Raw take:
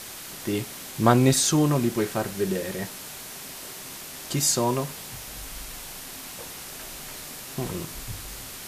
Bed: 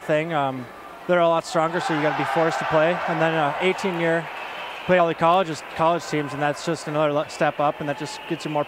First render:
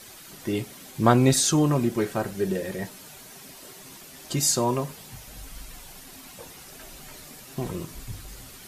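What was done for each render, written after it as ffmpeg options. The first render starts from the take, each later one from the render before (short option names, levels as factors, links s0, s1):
-af "afftdn=nr=9:nf=-40"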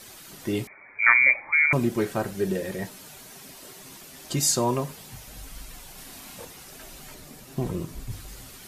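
-filter_complex "[0:a]asettb=1/sr,asplit=3[s0][s1][s2];[s0]atrim=end=0.674[s3];[s1]atrim=start=0.67:end=1.73,asetpts=PTS-STARTPTS,afade=t=in:d=0.004:c=qsin,afade=t=out:st=1.056:d=0.004:c=qsin,lowpass=f=2100:t=q:w=0.5098,lowpass=f=2100:t=q:w=0.6013,lowpass=f=2100:t=q:w=0.9,lowpass=f=2100:t=q:w=2.563,afreqshift=-2500[s4];[s2]atrim=start=1.726[s5];[s3][s4]acrossfade=d=0.004:c1=hsin:c2=qsin[s6];[s6][s5]acrossfade=d=0.004:c1=qsin:c2=hsin,asettb=1/sr,asplit=3[s7][s8][s9];[s7]atrim=end=5.954[s10];[s8]atrim=start=5.95:end=6.45,asetpts=PTS-STARTPTS,afade=t=in:d=0.004:c=qsin,afade=t=out:st=0.496:d=0.004:c=qsin,asplit=2[s11][s12];[s12]adelay=32,volume=0.75[s13];[s11][s13]amix=inputs=2:normalize=0,atrim=end_sample=22050[s14];[s9]atrim=start=6.446[s15];[s10][s14]acrossfade=d=0.004:c1=hsin:c2=qsin[s16];[s16][s15]acrossfade=d=0.004:c1=qsin:c2=hsin,asettb=1/sr,asplit=3[s17][s18][s19];[s17]atrim=end=7.144[s20];[s18]atrim=start=7.14:end=8.11,asetpts=PTS-STARTPTS,afade=t=in:d=0.004:c=qsin,afade=t=out:st=0.966:d=0.004:c=qsin,tiltshelf=f=680:g=3.5[s21];[s19]atrim=start=8.106[s22];[s20][s21]acrossfade=d=0.004:c1=hsin:c2=qsin[s23];[s23][s22]acrossfade=d=0.004:c1=qsin:c2=hsin"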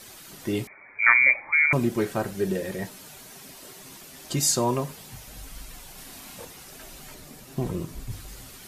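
-af anull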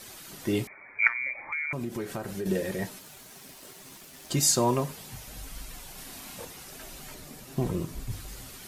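-filter_complex "[0:a]asettb=1/sr,asplit=3[s0][s1][s2];[s0]atrim=end=1.074[s3];[s1]atrim=start=1.07:end=2.46,asetpts=PTS-STARTPTS,afade=t=in:d=0.004:c=qsin,afade=t=out:st=1.386:d=0.004:c=qsin,acompressor=threshold=0.0316:ratio=5:attack=3.2:release=140:knee=1:detection=peak[s4];[s2]atrim=start=2.456[s5];[s3][s4]acrossfade=d=0.004:c1=hsin:c2=qsin[s6];[s6][s5]acrossfade=d=0.004:c1=qsin:c2=hsin,asettb=1/sr,asplit=3[s7][s8][s9];[s7]atrim=end=2.994[s10];[s8]atrim=start=2.99:end=4.81,asetpts=PTS-STARTPTS,afade=t=in:d=0.004:c=qsin,afade=t=out:st=1.816:d=0.004:c=qsin,aeval=exprs='sgn(val(0))*max(abs(val(0))-0.00237,0)':c=same[s11];[s9]atrim=start=4.806[s12];[s10][s11]acrossfade=d=0.004:c1=hsin:c2=qsin[s13];[s13][s12]acrossfade=d=0.004:c1=qsin:c2=hsin"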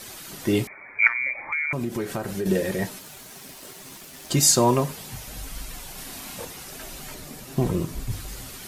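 -af "volume=1.88,alimiter=limit=0.794:level=0:latency=1"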